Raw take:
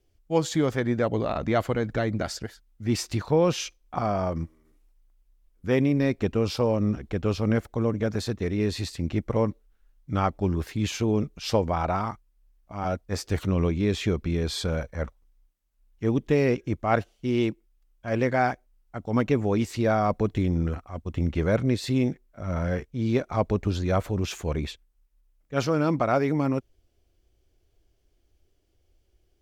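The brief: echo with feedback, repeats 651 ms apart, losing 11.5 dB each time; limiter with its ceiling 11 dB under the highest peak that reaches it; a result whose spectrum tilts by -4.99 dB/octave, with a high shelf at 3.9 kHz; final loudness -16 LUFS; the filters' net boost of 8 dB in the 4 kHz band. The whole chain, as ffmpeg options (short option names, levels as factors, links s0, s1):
-af "highshelf=f=3900:g=7,equalizer=f=4000:t=o:g=5.5,alimiter=limit=0.119:level=0:latency=1,aecho=1:1:651|1302|1953:0.266|0.0718|0.0194,volume=4.73"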